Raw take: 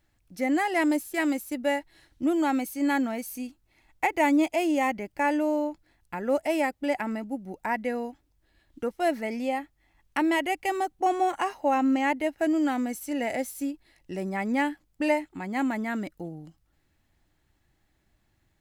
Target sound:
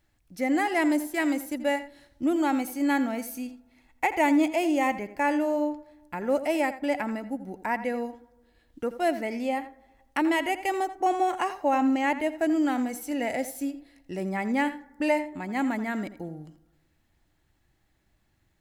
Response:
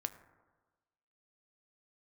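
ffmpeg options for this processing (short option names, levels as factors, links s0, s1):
-filter_complex "[0:a]asplit=2[s0][s1];[1:a]atrim=start_sample=2205,highshelf=f=5900:g=-8,adelay=84[s2];[s1][s2]afir=irnorm=-1:irlink=0,volume=0.266[s3];[s0][s3]amix=inputs=2:normalize=0"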